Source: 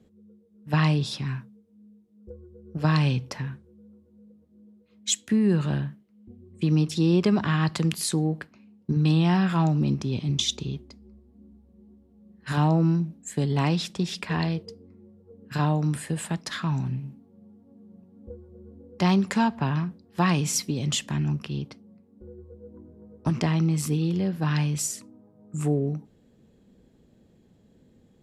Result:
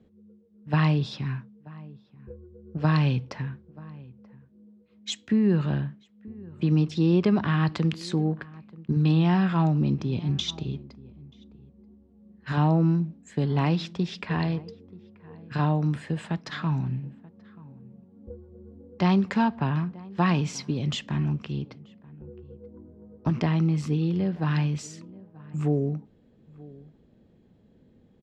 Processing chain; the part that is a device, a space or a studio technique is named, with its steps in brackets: shout across a valley (distance through air 160 m; echo from a far wall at 160 m, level -21 dB)

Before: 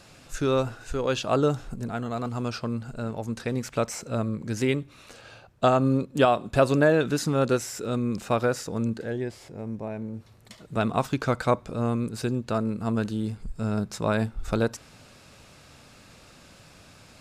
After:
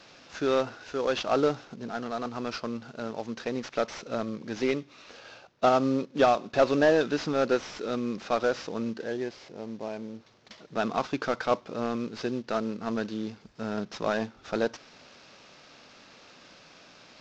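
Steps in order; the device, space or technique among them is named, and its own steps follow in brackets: early wireless headset (high-pass 250 Hz 12 dB/octave; CVSD coder 32 kbps)

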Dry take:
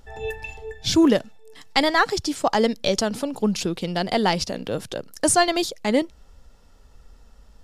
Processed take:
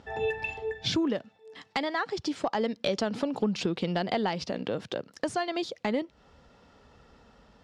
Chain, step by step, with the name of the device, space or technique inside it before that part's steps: AM radio (band-pass 120–3700 Hz; compression 4:1, threshold -29 dBFS, peak gain reduction 13.5 dB; saturation -15 dBFS, distortion -28 dB; tremolo 0.29 Hz, depth 32%); trim +4 dB

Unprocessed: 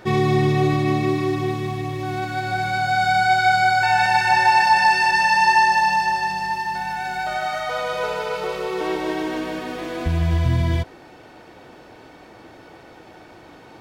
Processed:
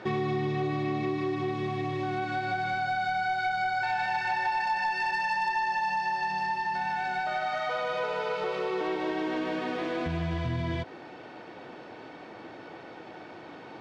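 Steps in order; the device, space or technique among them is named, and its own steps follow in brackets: AM radio (band-pass 140–4200 Hz; compression 4:1, threshold -27 dBFS, peak gain reduction 13 dB; saturation -19.5 dBFS, distortion -24 dB)

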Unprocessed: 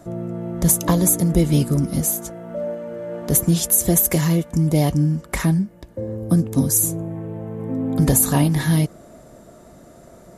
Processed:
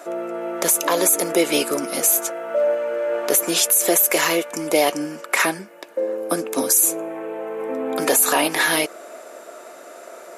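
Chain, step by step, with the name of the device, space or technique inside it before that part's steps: laptop speaker (high-pass 400 Hz 24 dB/octave; peaking EQ 1.4 kHz +6 dB 0.46 oct; peaking EQ 2.5 kHz +8.5 dB 0.41 oct; peak limiter -14.5 dBFS, peak gain reduction 11 dB); trim +8 dB

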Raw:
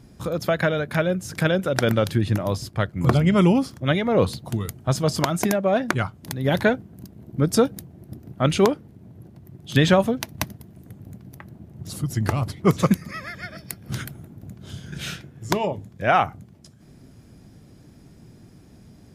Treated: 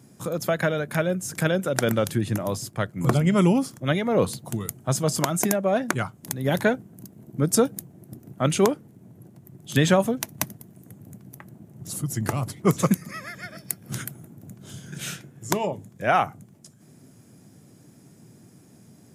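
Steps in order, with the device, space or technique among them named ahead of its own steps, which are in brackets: budget condenser microphone (high-pass 110 Hz 24 dB/octave; resonant high shelf 5.8 kHz +6.5 dB, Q 1.5); trim -2 dB

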